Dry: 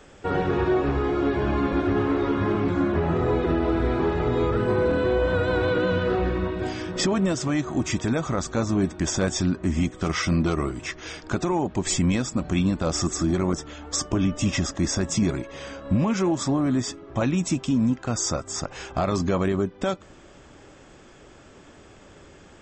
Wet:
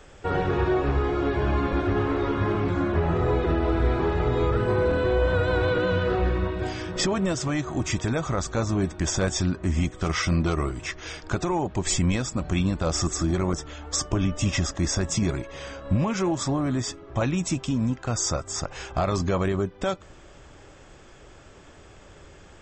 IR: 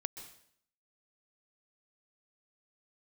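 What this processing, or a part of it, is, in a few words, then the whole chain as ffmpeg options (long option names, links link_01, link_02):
low shelf boost with a cut just above: -af "lowshelf=frequency=83:gain=6.5,equalizer=frequency=240:width_type=o:width=1:gain=-5.5"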